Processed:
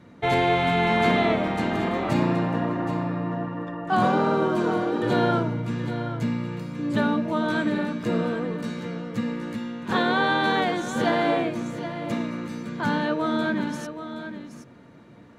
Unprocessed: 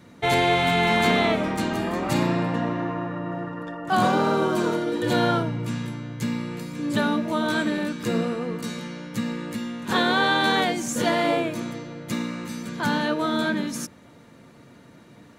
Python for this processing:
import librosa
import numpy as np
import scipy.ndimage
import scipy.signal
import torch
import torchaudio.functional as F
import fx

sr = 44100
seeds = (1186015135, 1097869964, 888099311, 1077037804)

p1 = fx.lowpass(x, sr, hz=2200.0, slope=6)
y = p1 + fx.echo_single(p1, sr, ms=773, db=-10.5, dry=0)